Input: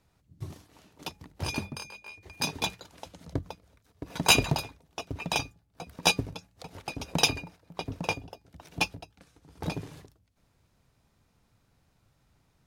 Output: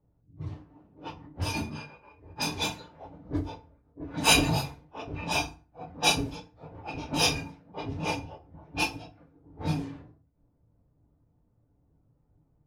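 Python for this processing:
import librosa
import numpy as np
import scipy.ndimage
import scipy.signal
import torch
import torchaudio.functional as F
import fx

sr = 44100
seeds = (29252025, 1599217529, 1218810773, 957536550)

y = fx.phase_scramble(x, sr, seeds[0], window_ms=100)
y = fx.env_lowpass(y, sr, base_hz=540.0, full_db=-28.5)
y = fx.rev_fdn(y, sr, rt60_s=0.37, lf_ratio=1.3, hf_ratio=0.7, size_ms=20.0, drr_db=5.0)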